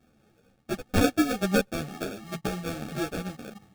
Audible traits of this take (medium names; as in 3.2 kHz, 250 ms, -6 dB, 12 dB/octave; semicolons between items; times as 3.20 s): a buzz of ramps at a fixed pitch in blocks of 16 samples; phasing stages 8, 1.1 Hz, lowest notch 710–2100 Hz; aliases and images of a low sample rate 1 kHz, jitter 0%; a shimmering, thickened sound